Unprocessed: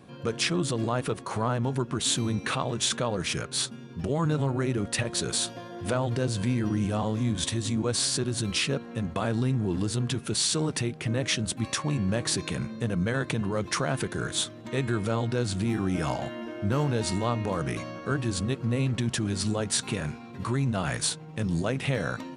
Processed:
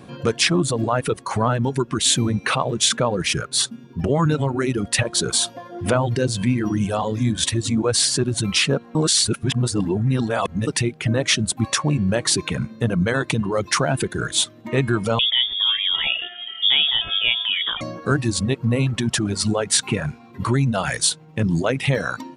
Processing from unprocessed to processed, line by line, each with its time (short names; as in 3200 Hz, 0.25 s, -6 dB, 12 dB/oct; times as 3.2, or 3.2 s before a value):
8.95–10.67 reverse
15.19–17.81 inverted band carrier 3500 Hz
whole clip: reverb removal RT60 1.7 s; gain +9 dB